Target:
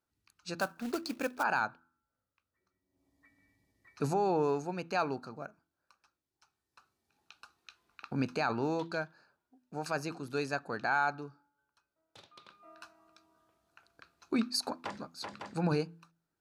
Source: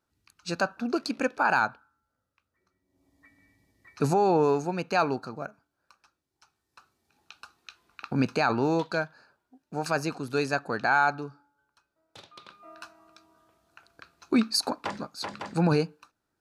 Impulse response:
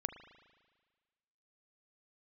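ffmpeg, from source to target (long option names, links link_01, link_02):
-filter_complex "[0:a]asplit=3[link_01][link_02][link_03];[link_01]afade=type=out:start_time=0.58:duration=0.02[link_04];[link_02]acrusher=bits=3:mode=log:mix=0:aa=0.000001,afade=type=in:start_time=0.58:duration=0.02,afade=type=out:start_time=1.42:duration=0.02[link_05];[link_03]afade=type=in:start_time=1.42:duration=0.02[link_06];[link_04][link_05][link_06]amix=inputs=3:normalize=0,bandreject=frequency=83.23:width_type=h:width=4,bandreject=frequency=166.46:width_type=h:width=4,bandreject=frequency=249.69:width_type=h:width=4,bandreject=frequency=332.92:width_type=h:width=4,volume=-7dB"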